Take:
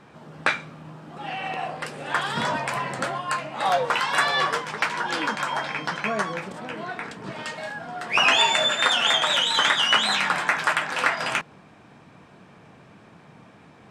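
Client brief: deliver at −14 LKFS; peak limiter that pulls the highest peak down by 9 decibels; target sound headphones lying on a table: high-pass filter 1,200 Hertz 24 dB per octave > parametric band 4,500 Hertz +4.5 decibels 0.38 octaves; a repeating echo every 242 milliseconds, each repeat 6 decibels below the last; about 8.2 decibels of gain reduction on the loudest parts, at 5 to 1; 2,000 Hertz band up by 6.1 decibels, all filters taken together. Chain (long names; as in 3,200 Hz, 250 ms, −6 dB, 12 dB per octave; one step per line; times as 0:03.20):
parametric band 2,000 Hz +8 dB
downward compressor 5 to 1, threshold −20 dBFS
brickwall limiter −14 dBFS
high-pass filter 1,200 Hz 24 dB per octave
parametric band 4,500 Hz +4.5 dB 0.38 octaves
repeating echo 242 ms, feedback 50%, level −6 dB
level +10.5 dB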